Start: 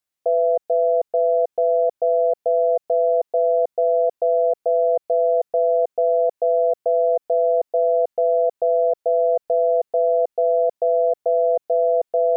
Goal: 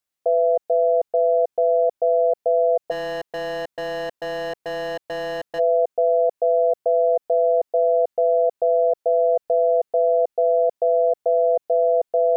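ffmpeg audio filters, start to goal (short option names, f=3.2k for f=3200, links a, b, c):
-filter_complex "[0:a]asplit=3[a][b][c];[a]afade=t=out:st=2.9:d=0.02[d];[b]asoftclip=type=hard:threshold=-26dB,afade=t=in:st=2.9:d=0.02,afade=t=out:st=5.58:d=0.02[e];[c]afade=t=in:st=5.58:d=0.02[f];[d][e][f]amix=inputs=3:normalize=0"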